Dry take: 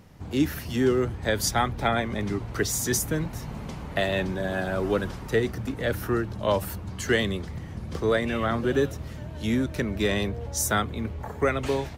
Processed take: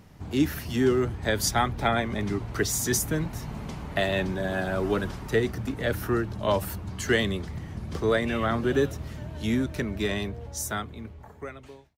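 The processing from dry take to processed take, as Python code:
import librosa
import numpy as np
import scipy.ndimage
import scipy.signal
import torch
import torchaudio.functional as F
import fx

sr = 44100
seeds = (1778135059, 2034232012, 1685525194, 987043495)

y = fx.fade_out_tail(x, sr, length_s=2.62)
y = fx.notch(y, sr, hz=510.0, q=12.0)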